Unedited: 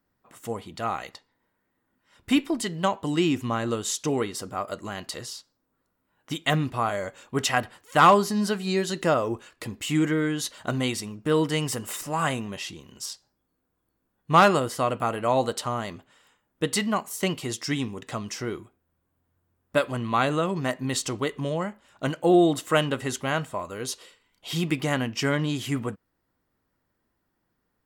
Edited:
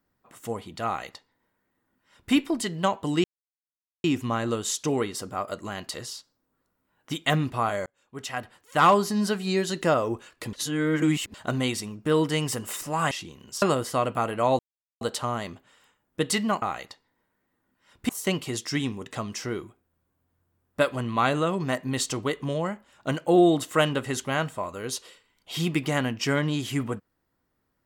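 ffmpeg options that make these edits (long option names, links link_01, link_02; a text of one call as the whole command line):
ffmpeg -i in.wav -filter_complex "[0:a]asplit=10[link_01][link_02][link_03][link_04][link_05][link_06][link_07][link_08][link_09][link_10];[link_01]atrim=end=3.24,asetpts=PTS-STARTPTS,afade=type=out:start_time=3.236:duration=0.004:curve=hsin,apad=pad_dur=0.8[link_11];[link_02]atrim=start=3.24:end=7.06,asetpts=PTS-STARTPTS,afade=type=in:duration=0.004:curve=hsin,afade=type=out:start_time=3.816:duration=0.004:curve=hsin[link_12];[link_03]atrim=start=7.06:end=9.732,asetpts=PTS-STARTPTS,afade=type=in:duration=1.31[link_13];[link_04]atrim=start=9.728:end=10.542,asetpts=PTS-STARTPTS,areverse[link_14];[link_05]atrim=start=10.538:end=12.312[link_15];[link_06]atrim=start=12.588:end=13.102[link_16];[link_07]atrim=start=14.468:end=15.44,asetpts=PTS-STARTPTS,afade=type=out:start_time=0.968:duration=0.004:curve=hsin,apad=pad_dur=0.42[link_17];[link_08]atrim=start=15.44:end=17.052,asetpts=PTS-STARTPTS,afade=type=in:duration=0.004:curve=hsin[link_18];[link_09]atrim=start=0.858:end=2.332[link_19];[link_10]atrim=start=17.048[link_20];[link_11][link_12][link_13]concat=n=3:v=0:a=1[link_21];[link_21][link_14]acrossfade=duration=0.004:curve1=hsin:curve2=hsin[link_22];[link_22][link_15]acrossfade=duration=0.004:curve1=hsin:curve2=hsin[link_23];[link_23][link_16]acrossfade=duration=0.004:curve1=hsin:curve2=hsin[link_24];[link_17][link_18]concat=n=2:v=0:a=1[link_25];[link_24][link_25]acrossfade=duration=0.004:curve1=hsin:curve2=hsin[link_26];[link_26][link_19]acrossfade=duration=0.004:curve1=hsin:curve2=hsin[link_27];[link_27][link_20]acrossfade=duration=0.004:curve1=hsin:curve2=hsin" out.wav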